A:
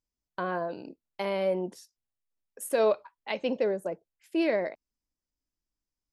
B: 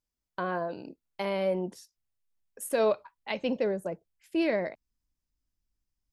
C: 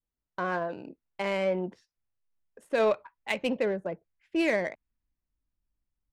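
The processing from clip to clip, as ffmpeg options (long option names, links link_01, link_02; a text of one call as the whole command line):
ffmpeg -i in.wav -af "asubboost=boost=2.5:cutoff=220" out.wav
ffmpeg -i in.wav -af "adynamicequalizer=threshold=0.00398:dfrequency=2100:dqfactor=1:tfrequency=2100:tqfactor=1:attack=5:release=100:ratio=0.375:range=3.5:mode=boostabove:tftype=bell,adynamicsmooth=sensitivity=4:basefreq=2300" out.wav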